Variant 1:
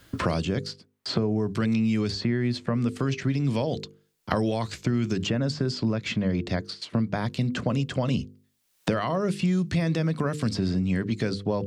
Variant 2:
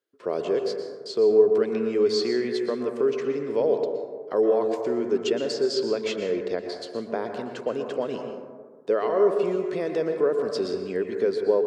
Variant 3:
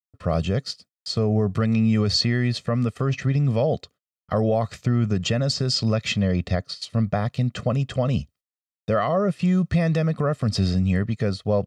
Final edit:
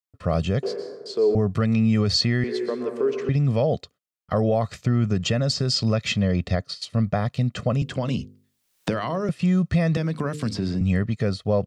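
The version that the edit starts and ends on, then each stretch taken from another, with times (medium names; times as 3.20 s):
3
0.63–1.35 s: from 2
2.44–3.29 s: from 2
7.82–9.29 s: from 1
9.97–10.81 s: from 1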